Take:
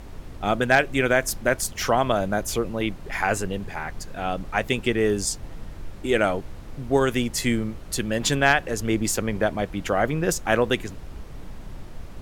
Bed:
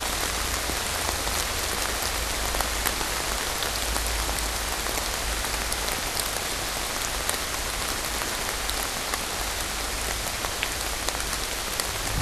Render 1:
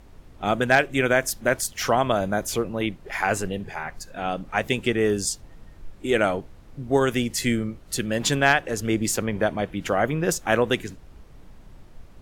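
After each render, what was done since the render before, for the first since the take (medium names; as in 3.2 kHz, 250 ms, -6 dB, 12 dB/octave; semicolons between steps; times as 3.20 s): noise print and reduce 9 dB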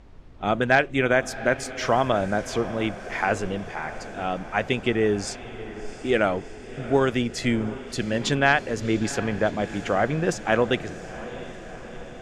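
distance through air 90 m; echo that smears into a reverb 701 ms, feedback 66%, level -15 dB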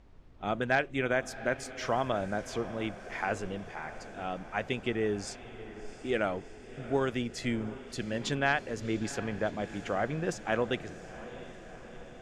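trim -8.5 dB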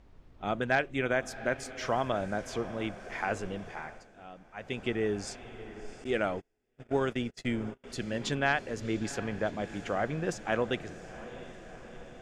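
3.79–4.83 s: dip -12 dB, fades 0.27 s; 6.04–7.84 s: gate -39 dBFS, range -32 dB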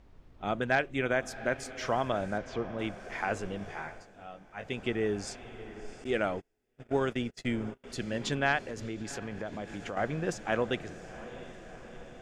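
2.38–2.79 s: distance through air 140 m; 3.59–4.67 s: doubling 20 ms -4.5 dB; 8.58–9.97 s: compression 4:1, threshold -34 dBFS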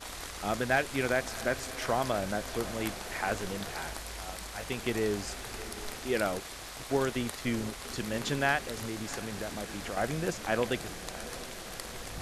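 add bed -14.5 dB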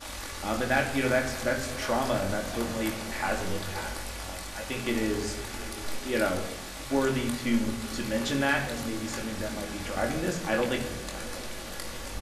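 doubling 22 ms -5.5 dB; simulated room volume 3400 m³, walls furnished, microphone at 2.4 m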